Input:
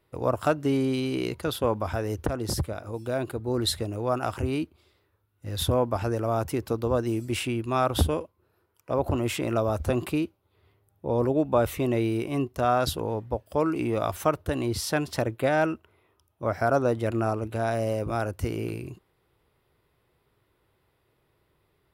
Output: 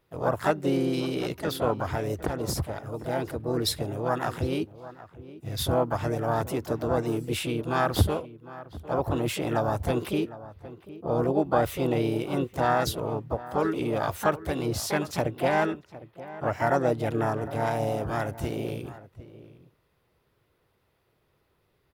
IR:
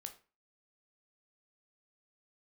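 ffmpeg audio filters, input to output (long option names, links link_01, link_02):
-filter_complex "[0:a]asplit=2[link_01][link_02];[link_02]adelay=758,volume=-16dB,highshelf=frequency=4000:gain=-17.1[link_03];[link_01][link_03]amix=inputs=2:normalize=0,asplit=3[link_04][link_05][link_06];[link_05]asetrate=55563,aresample=44100,atempo=0.793701,volume=-8dB[link_07];[link_06]asetrate=58866,aresample=44100,atempo=0.749154,volume=-7dB[link_08];[link_04][link_07][link_08]amix=inputs=3:normalize=0,volume=-2dB"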